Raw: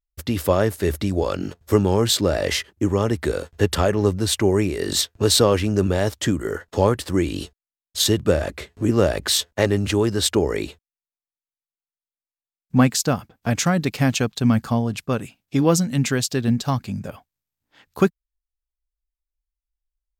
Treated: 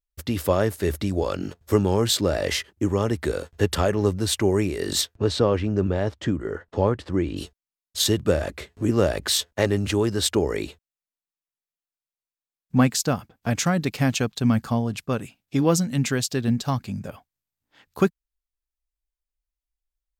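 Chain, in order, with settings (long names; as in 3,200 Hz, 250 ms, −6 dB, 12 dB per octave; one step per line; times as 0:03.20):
0:05.16–0:07.37: head-to-tape spacing loss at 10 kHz 21 dB
level −2.5 dB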